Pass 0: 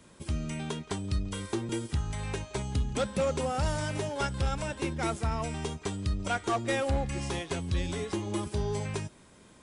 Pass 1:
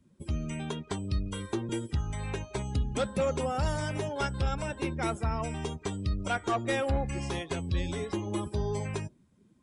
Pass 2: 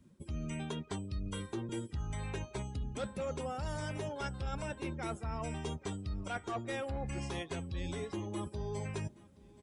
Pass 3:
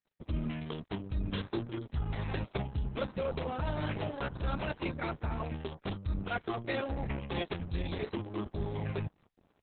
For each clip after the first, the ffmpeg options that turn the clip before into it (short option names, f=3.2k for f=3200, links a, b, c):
-af "afftdn=nr=20:nf=-46"
-af "areverse,acompressor=threshold=-38dB:ratio=6,areverse,aecho=1:1:825|1650|2475:0.0708|0.0333|0.0156,volume=2dB"
-af "aeval=exprs='sgn(val(0))*max(abs(val(0))-0.00188,0)':c=same,volume=6dB" -ar 48000 -c:a libopus -b:a 6k